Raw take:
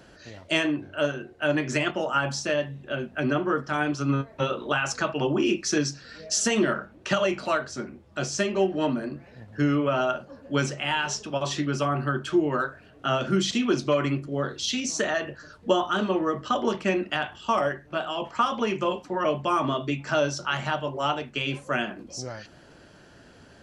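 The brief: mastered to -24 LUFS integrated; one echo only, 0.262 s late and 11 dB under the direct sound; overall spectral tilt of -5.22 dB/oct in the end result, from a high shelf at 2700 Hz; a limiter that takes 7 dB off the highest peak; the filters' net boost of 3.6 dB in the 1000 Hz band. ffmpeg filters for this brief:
-af "equalizer=f=1k:t=o:g=6,highshelf=f=2.7k:g=-7,alimiter=limit=-15dB:level=0:latency=1,aecho=1:1:262:0.282,volume=3dB"

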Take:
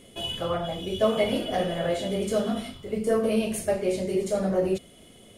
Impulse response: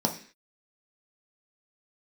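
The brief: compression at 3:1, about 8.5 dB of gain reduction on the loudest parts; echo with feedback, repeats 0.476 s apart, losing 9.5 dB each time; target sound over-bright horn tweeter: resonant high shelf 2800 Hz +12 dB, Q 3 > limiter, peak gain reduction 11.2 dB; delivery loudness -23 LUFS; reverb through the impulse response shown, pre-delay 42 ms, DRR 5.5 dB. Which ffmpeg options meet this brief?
-filter_complex "[0:a]acompressor=threshold=-30dB:ratio=3,aecho=1:1:476|952|1428|1904:0.335|0.111|0.0365|0.012,asplit=2[a][b];[1:a]atrim=start_sample=2205,adelay=42[c];[b][c]afir=irnorm=-1:irlink=0,volume=-15dB[d];[a][d]amix=inputs=2:normalize=0,highshelf=f=2.8k:t=q:w=3:g=12,volume=6.5dB,alimiter=limit=-14.5dB:level=0:latency=1"

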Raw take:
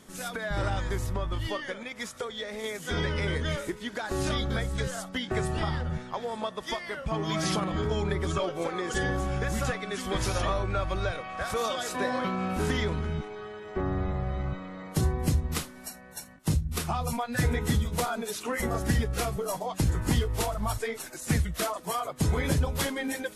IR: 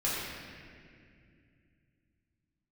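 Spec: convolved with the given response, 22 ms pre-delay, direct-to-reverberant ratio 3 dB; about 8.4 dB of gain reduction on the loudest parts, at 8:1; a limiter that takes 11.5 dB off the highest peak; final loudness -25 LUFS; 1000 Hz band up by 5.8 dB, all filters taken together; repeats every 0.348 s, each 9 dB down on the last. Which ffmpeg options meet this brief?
-filter_complex "[0:a]equalizer=f=1k:t=o:g=7.5,acompressor=threshold=-29dB:ratio=8,alimiter=level_in=4dB:limit=-24dB:level=0:latency=1,volume=-4dB,aecho=1:1:348|696|1044|1392:0.355|0.124|0.0435|0.0152,asplit=2[a][b];[1:a]atrim=start_sample=2205,adelay=22[c];[b][c]afir=irnorm=-1:irlink=0,volume=-11.5dB[d];[a][d]amix=inputs=2:normalize=0,volume=10dB"

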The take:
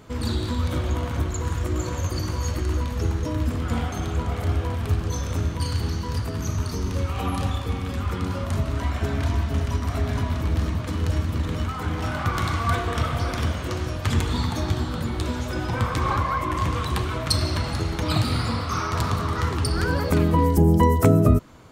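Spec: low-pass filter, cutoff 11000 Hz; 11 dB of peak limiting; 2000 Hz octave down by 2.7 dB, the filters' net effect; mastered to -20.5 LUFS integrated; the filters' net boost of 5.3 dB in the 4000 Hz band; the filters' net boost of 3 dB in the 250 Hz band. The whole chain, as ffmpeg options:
-af "lowpass=11k,equalizer=f=250:t=o:g=4,equalizer=f=2k:t=o:g=-5.5,equalizer=f=4k:t=o:g=7.5,volume=4.5dB,alimiter=limit=-9dB:level=0:latency=1"

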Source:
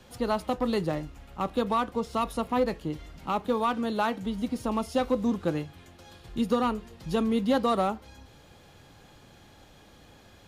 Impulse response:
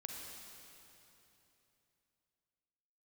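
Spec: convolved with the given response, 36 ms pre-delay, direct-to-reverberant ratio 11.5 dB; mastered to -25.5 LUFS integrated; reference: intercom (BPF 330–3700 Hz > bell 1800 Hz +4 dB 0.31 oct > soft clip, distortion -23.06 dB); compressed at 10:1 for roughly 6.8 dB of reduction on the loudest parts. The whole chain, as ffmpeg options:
-filter_complex "[0:a]acompressor=threshold=-27dB:ratio=10,asplit=2[a][b];[1:a]atrim=start_sample=2205,adelay=36[c];[b][c]afir=irnorm=-1:irlink=0,volume=-9.5dB[d];[a][d]amix=inputs=2:normalize=0,highpass=330,lowpass=3.7k,equalizer=f=1.8k:t=o:w=0.31:g=4,asoftclip=threshold=-22dB,volume=11dB"

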